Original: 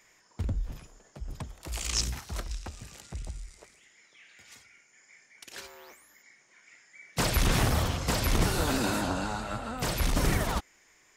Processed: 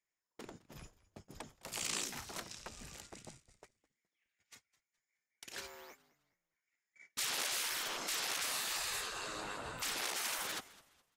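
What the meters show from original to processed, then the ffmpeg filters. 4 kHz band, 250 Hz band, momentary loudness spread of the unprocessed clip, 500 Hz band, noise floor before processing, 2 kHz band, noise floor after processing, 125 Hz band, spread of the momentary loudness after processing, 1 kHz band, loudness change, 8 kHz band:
-4.0 dB, -20.5 dB, 18 LU, -14.5 dB, -63 dBFS, -6.0 dB, under -85 dBFS, -27.0 dB, 20 LU, -10.5 dB, -8.0 dB, -3.5 dB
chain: -filter_complex "[0:a]afftfilt=real='re*lt(hypot(re,im),0.0501)':imag='im*lt(hypot(re,im),0.0501)':win_size=1024:overlap=0.75,agate=range=-29dB:threshold=-50dB:ratio=16:detection=peak,asplit=4[a][b][c][d];[b]adelay=209,afreqshift=-120,volume=-20dB[e];[c]adelay=418,afreqshift=-240,volume=-29.9dB[f];[d]adelay=627,afreqshift=-360,volume=-39.8dB[g];[a][e][f][g]amix=inputs=4:normalize=0,volume=-2.5dB"

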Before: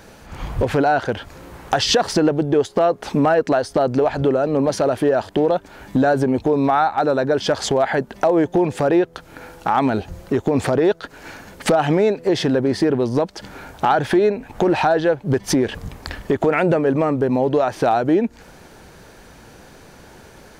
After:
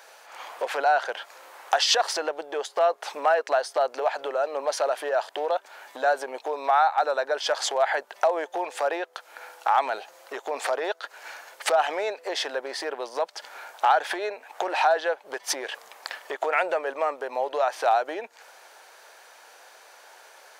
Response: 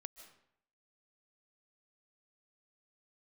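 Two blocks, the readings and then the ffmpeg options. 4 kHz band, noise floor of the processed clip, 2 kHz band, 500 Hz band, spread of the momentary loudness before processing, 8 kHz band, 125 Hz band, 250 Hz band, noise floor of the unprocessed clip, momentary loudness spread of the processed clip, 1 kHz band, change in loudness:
-2.5 dB, -52 dBFS, -2.5 dB, -8.5 dB, 10 LU, -2.5 dB, under -40 dB, -25.0 dB, -45 dBFS, 15 LU, -3.0 dB, -7.0 dB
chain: -af "highpass=f=600:w=0.5412,highpass=f=600:w=1.3066,volume=-2.5dB"

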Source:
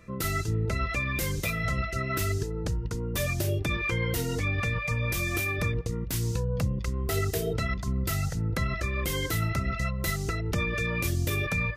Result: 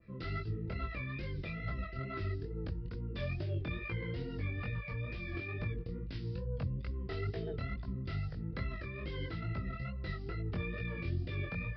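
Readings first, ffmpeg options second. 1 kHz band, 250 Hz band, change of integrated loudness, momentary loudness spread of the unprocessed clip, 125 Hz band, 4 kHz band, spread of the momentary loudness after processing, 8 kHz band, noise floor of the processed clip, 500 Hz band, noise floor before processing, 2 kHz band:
-13.0 dB, -9.0 dB, -10.5 dB, 3 LU, -9.0 dB, -15.0 dB, 3 LU, under -40 dB, -44 dBFS, -10.5 dB, -34 dBFS, -13.0 dB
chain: -filter_complex "[0:a]acrossover=split=650|1300[a][b][c];[b]acrusher=bits=5:mix=0:aa=0.5[d];[a][d][c]amix=inputs=3:normalize=0,highshelf=f=4.2k:g=-6,areverse,acompressor=mode=upward:threshold=-34dB:ratio=2.5,areverse,flanger=delay=18:depth=6:speed=2.3,aresample=11025,aresample=44100,adynamicequalizer=threshold=0.00316:dfrequency=2000:dqfactor=0.7:tfrequency=2000:tqfactor=0.7:attack=5:release=100:ratio=0.375:range=2.5:mode=cutabove:tftype=highshelf,volume=-6dB"

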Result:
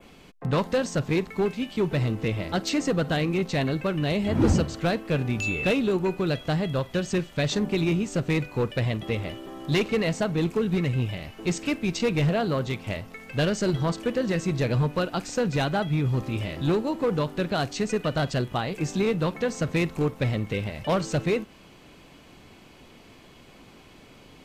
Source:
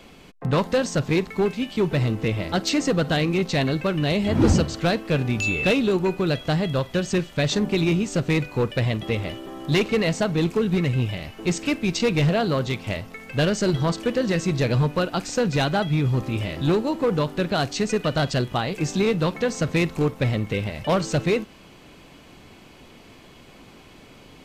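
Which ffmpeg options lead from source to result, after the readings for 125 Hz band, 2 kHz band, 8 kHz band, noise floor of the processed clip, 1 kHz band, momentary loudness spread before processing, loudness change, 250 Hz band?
-3.0 dB, -3.5 dB, -4.5 dB, -51 dBFS, -3.0 dB, 5 LU, -3.0 dB, -3.0 dB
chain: -af "adynamicequalizer=threshold=0.00891:dfrequency=4600:dqfactor=1:tfrequency=4600:tqfactor=1:attack=5:release=100:ratio=0.375:range=2:mode=cutabove:tftype=bell,volume=-3dB"

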